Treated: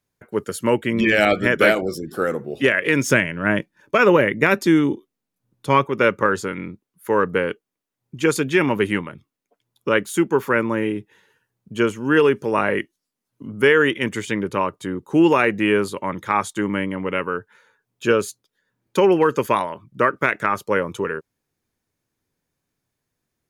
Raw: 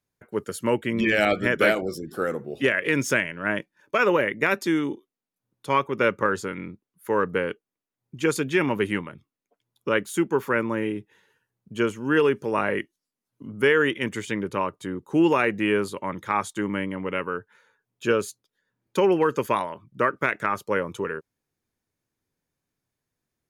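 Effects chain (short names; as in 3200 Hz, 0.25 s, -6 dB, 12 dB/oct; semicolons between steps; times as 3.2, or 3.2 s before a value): 3.08–5.85 low shelf 250 Hz +8.5 dB; gain +4.5 dB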